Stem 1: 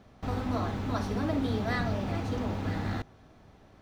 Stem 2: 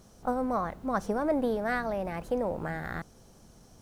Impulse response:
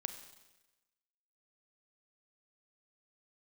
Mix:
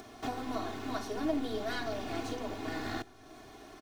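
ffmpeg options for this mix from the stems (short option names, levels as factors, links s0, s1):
-filter_complex "[0:a]highpass=f=140:w=0.5412,highpass=f=140:w=1.3066,highshelf=f=3300:g=7.5,aeval=exprs='0.141*(cos(1*acos(clip(val(0)/0.141,-1,1)))-cos(1*PI/2))+0.0178*(cos(4*acos(clip(val(0)/0.141,-1,1)))-cos(4*PI/2))':c=same,volume=0.794,asplit=2[s0][s1];[s1]volume=0.15[s2];[1:a]adelay=0.5,volume=0.2,asplit=2[s3][s4];[s4]apad=whole_len=168114[s5];[s0][s5]sidechaincompress=threshold=0.00447:ratio=8:attack=16:release=1120[s6];[2:a]atrim=start_sample=2205[s7];[s2][s7]afir=irnorm=-1:irlink=0[s8];[s6][s3][s8]amix=inputs=3:normalize=0,acompressor=mode=upward:threshold=0.00501:ratio=2.5,aecho=1:1:2.8:1"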